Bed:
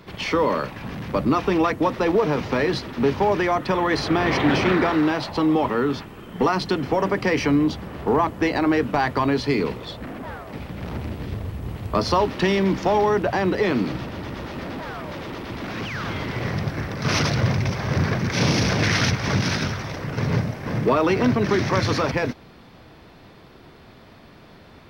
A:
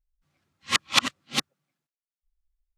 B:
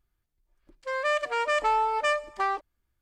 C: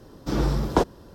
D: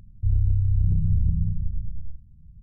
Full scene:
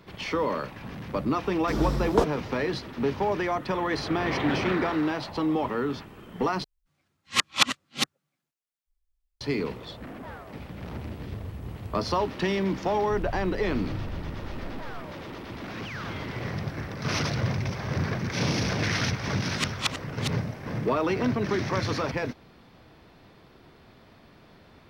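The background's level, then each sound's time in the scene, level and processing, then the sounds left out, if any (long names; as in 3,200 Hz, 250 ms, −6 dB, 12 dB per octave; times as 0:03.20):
bed −6.5 dB
0:01.41: mix in C −3.5 dB
0:06.64: overwrite with A −0.5 dB
0:12.87: mix in D −10.5 dB + chorus effect 0.92 Hz
0:18.88: mix in A −7.5 dB
not used: B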